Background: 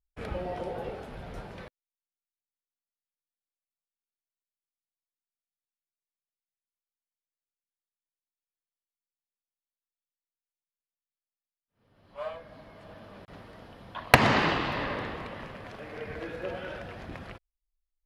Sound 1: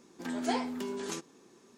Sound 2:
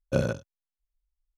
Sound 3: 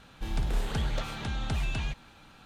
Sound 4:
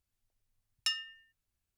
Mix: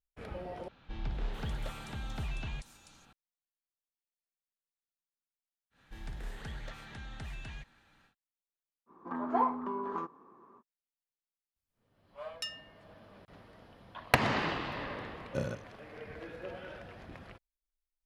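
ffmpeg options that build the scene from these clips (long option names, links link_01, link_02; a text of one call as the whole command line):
ffmpeg -i bed.wav -i cue0.wav -i cue1.wav -i cue2.wav -i cue3.wav -filter_complex "[3:a]asplit=2[link_01][link_02];[0:a]volume=-7.5dB[link_03];[link_01]acrossover=split=4900[link_04][link_05];[link_05]adelay=440[link_06];[link_04][link_06]amix=inputs=2:normalize=0[link_07];[link_02]equalizer=frequency=1800:width=3.6:gain=9.5[link_08];[1:a]lowpass=frequency=1100:width_type=q:width=8.3[link_09];[link_03]asplit=2[link_10][link_11];[link_10]atrim=end=0.684[link_12];[link_07]atrim=end=2.45,asetpts=PTS-STARTPTS,volume=-7dB[link_13];[link_11]atrim=start=3.126[link_14];[link_08]atrim=end=2.45,asetpts=PTS-STARTPTS,volume=-13dB,afade=type=in:duration=0.1,afade=type=out:start_time=2.35:duration=0.1,adelay=5700[link_15];[link_09]atrim=end=1.77,asetpts=PTS-STARTPTS,volume=-3dB,afade=type=in:duration=0.05,afade=type=out:start_time=1.72:duration=0.05,adelay=8860[link_16];[4:a]atrim=end=1.77,asetpts=PTS-STARTPTS,volume=-7dB,afade=type=in:duration=0.004:curve=hsin,afade=type=out:start_time=1.766:duration=0.004:curve=hsin,adelay=11560[link_17];[2:a]atrim=end=1.37,asetpts=PTS-STARTPTS,volume=-9.5dB,afade=type=in:duration=0.004:curve=hsin,afade=type=out:start_time=1.366:duration=0.004:curve=hsin,adelay=15220[link_18];[link_12][link_13]acrossfade=duration=0.004:curve1=hsin:curve2=hsin[link_19];[link_19][link_14]acrossfade=duration=0.004:curve1=hsin:curve2=hsin[link_20];[link_20][link_15][link_16][link_17][link_18]amix=inputs=5:normalize=0" out.wav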